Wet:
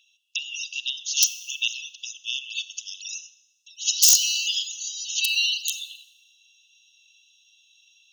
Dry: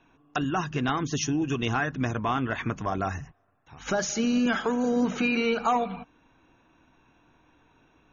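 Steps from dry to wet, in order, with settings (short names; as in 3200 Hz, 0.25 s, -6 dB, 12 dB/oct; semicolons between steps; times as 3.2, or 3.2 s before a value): bell 5400 Hz +8 dB 2.1 oct, from 2.28 s +14 dB; wrapped overs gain 12 dB; brick-wall FIR high-pass 2600 Hz; Schroeder reverb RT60 1 s, combs from 30 ms, DRR 15 dB; gain +5.5 dB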